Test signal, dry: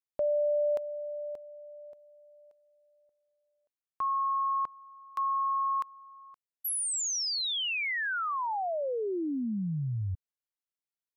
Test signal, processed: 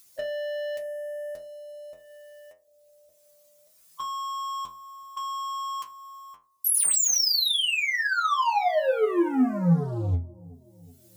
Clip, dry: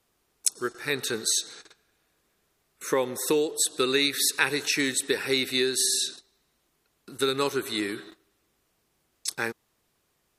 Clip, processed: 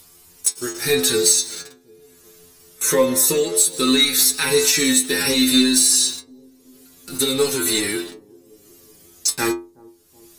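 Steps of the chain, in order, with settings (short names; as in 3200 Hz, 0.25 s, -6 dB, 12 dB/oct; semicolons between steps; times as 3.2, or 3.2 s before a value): harmonic-percussive split harmonic +8 dB; tone controls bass +7 dB, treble +13 dB; compressor 6:1, threshold -18 dBFS; sample leveller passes 3; upward compressor, threshold -26 dBFS; metallic resonator 85 Hz, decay 0.37 s, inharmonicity 0.002; on a send: analogue delay 0.372 s, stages 2048, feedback 59%, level -23.5 dB; on the sum: gain +4 dB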